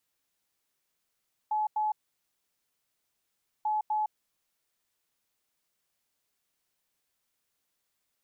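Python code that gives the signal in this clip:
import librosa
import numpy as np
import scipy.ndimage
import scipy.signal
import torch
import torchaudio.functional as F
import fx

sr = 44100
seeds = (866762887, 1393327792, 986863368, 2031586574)

y = fx.beep_pattern(sr, wave='sine', hz=854.0, on_s=0.16, off_s=0.09, beeps=2, pause_s=1.73, groups=2, level_db=-25.5)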